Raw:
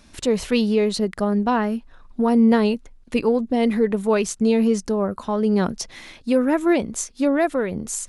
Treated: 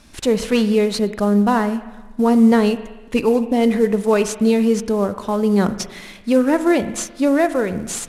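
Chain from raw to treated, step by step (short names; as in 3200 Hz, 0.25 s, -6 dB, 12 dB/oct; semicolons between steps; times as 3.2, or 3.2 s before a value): CVSD 64 kbps; spring tank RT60 1.2 s, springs 39/54 ms, chirp 80 ms, DRR 11.5 dB; gain +3 dB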